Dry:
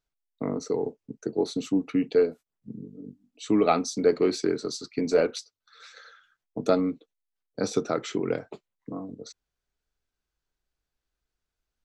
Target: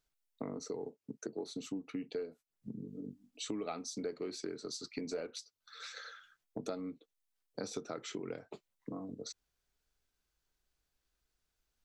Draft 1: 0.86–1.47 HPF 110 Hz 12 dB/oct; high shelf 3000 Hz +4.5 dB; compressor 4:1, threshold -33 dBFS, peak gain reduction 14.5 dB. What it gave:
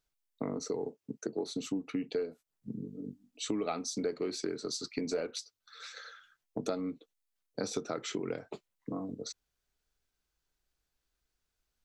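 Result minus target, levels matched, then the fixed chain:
compressor: peak gain reduction -5.5 dB
0.86–1.47 HPF 110 Hz 12 dB/oct; high shelf 3000 Hz +4.5 dB; compressor 4:1, threshold -40.5 dBFS, peak gain reduction 20.5 dB

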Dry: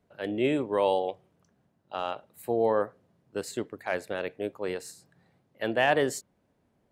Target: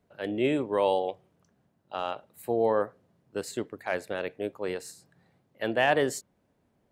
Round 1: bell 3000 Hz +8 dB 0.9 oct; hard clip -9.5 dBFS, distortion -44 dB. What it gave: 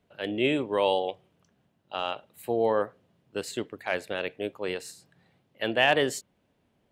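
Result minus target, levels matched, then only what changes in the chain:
4000 Hz band +6.0 dB
remove: bell 3000 Hz +8 dB 0.9 oct

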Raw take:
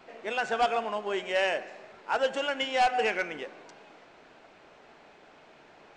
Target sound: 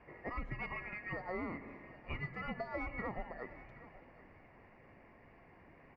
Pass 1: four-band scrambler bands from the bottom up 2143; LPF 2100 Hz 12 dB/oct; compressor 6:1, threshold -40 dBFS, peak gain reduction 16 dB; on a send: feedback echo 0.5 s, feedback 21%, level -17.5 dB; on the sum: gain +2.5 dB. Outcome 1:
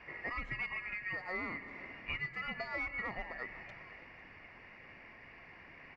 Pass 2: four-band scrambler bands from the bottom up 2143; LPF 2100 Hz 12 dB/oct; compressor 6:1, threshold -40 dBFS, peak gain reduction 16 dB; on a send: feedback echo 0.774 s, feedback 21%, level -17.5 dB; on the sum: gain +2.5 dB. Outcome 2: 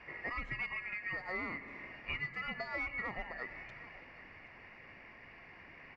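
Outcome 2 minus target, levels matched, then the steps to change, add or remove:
2000 Hz band +3.5 dB
change: LPF 860 Hz 12 dB/oct

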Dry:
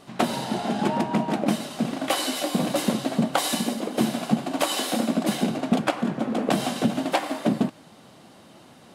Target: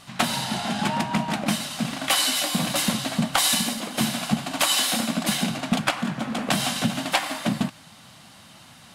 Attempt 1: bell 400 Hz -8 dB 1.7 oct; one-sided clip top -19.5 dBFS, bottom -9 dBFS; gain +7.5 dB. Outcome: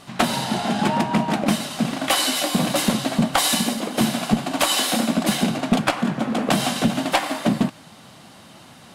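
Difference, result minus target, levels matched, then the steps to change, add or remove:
500 Hz band +4.0 dB
change: bell 400 Hz -18.5 dB 1.7 oct

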